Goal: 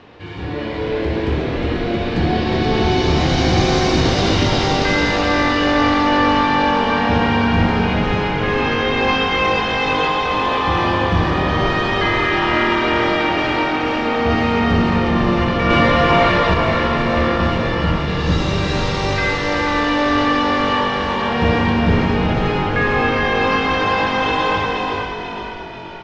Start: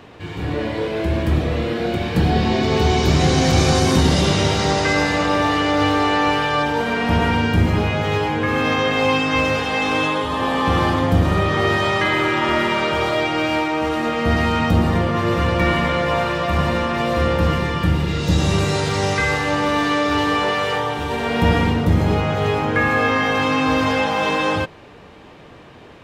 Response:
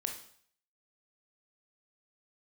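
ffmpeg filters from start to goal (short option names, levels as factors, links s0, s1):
-filter_complex "[0:a]lowpass=f=5600:w=0.5412,lowpass=f=5600:w=1.3066,bandreject=f=640:w=20,aecho=1:1:364:0.596,asplit=2[s0][s1];[1:a]atrim=start_sample=2205,adelay=60[s2];[s1][s2]afir=irnorm=-1:irlink=0,volume=0.376[s3];[s0][s3]amix=inputs=2:normalize=0,asettb=1/sr,asplit=3[s4][s5][s6];[s4]atrim=end=15.704[s7];[s5]atrim=start=15.7:end=16.54,asetpts=PTS-STARTPTS,afade=t=in:d=0.004:c=qsin,afade=t=out:st=0.836:d=0.004:c=qsin,acontrast=37[s8];[s6]atrim=start=16.536[s9];[s7][s8]acrossfade=d=0.004:c1=hsin:c2=qsin[s10];[s10][s9]acrossfade=d=0.004:c1=qsin:c2=hsin,equalizer=f=140:t=o:w=0.77:g=-3.5,asplit=2[s11][s12];[s12]asplit=6[s13][s14][s15][s16][s17][s18];[s13]adelay=486,afreqshift=-47,volume=0.447[s19];[s14]adelay=972,afreqshift=-94,volume=0.237[s20];[s15]adelay=1458,afreqshift=-141,volume=0.126[s21];[s16]adelay=1944,afreqshift=-188,volume=0.0668[s22];[s17]adelay=2430,afreqshift=-235,volume=0.0351[s23];[s18]adelay=2916,afreqshift=-282,volume=0.0186[s24];[s19][s20][s21][s22][s23][s24]amix=inputs=6:normalize=0[s25];[s11][s25]amix=inputs=2:normalize=0,volume=0.891"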